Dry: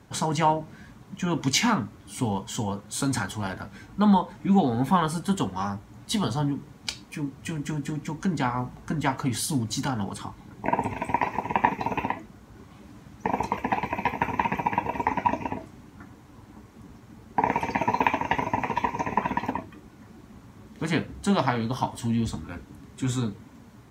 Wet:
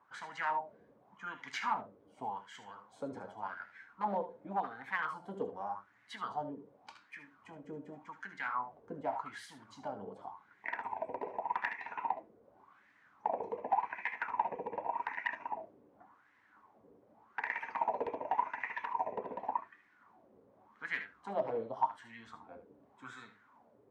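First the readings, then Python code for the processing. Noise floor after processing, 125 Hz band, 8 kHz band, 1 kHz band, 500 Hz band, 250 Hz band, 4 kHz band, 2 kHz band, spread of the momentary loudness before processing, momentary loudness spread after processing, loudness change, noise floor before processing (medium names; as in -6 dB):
-67 dBFS, -28.5 dB, under -25 dB, -10.0 dB, -9.0 dB, -23.5 dB, -20.0 dB, -7.5 dB, 12 LU, 16 LU, -11.5 dB, -51 dBFS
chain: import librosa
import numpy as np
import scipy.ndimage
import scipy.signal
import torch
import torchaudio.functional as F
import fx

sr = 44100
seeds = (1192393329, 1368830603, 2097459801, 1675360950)

y = np.minimum(x, 2.0 * 10.0 ** (-15.5 / 20.0) - x)
y = fx.room_early_taps(y, sr, ms=(68, 78), db=(-13.0, -13.0))
y = fx.filter_lfo_bandpass(y, sr, shape='sine', hz=0.87, low_hz=470.0, high_hz=1900.0, q=5.4)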